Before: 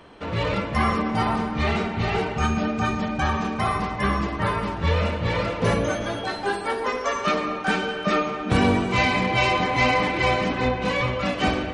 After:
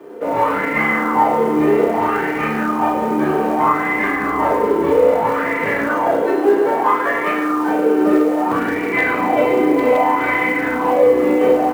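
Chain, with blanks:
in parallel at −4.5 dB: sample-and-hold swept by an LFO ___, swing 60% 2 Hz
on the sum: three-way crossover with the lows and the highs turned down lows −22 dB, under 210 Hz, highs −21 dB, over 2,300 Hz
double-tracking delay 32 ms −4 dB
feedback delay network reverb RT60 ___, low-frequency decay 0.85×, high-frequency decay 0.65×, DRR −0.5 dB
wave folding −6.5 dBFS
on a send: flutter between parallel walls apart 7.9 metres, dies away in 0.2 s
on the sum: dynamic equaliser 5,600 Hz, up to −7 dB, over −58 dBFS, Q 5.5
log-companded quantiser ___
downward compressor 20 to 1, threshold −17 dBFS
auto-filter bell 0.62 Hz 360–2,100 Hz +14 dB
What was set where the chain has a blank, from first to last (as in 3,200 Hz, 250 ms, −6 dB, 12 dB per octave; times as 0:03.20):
29×, 2.2 s, 6 bits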